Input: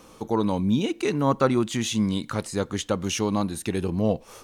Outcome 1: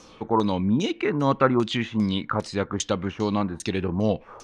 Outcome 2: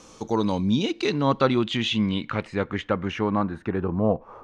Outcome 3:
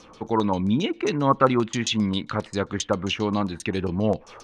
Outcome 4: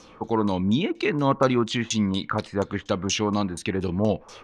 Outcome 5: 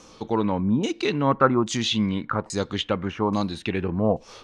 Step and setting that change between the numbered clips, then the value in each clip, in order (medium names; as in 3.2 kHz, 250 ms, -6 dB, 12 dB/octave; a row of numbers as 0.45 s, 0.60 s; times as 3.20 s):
LFO low-pass, rate: 2.5 Hz, 0.21 Hz, 7.5 Hz, 4.2 Hz, 1.2 Hz